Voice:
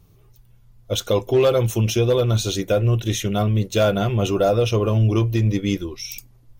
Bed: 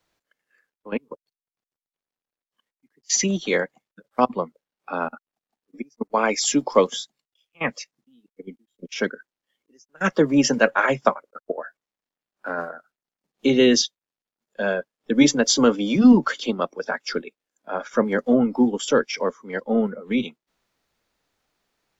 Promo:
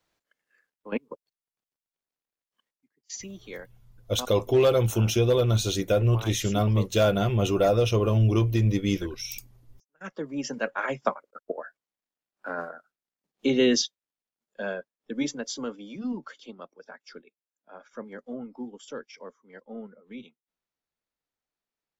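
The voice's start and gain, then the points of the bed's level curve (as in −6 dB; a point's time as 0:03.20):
3.20 s, −3.5 dB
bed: 0:02.71 −3 dB
0:03.19 −18.5 dB
0:09.99 −18.5 dB
0:11.29 −5 dB
0:14.24 −5 dB
0:15.93 −19 dB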